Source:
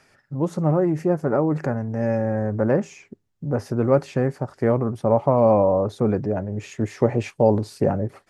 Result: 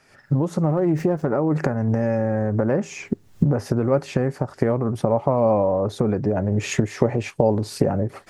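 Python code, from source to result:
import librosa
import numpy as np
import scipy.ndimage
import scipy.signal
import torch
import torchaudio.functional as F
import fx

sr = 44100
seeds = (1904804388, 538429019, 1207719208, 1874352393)

y = fx.recorder_agc(x, sr, target_db=-10.5, rise_db_per_s=57.0, max_gain_db=30)
y = fx.running_max(y, sr, window=3, at=(0.77, 1.27))
y = y * librosa.db_to_amplitude(-2.0)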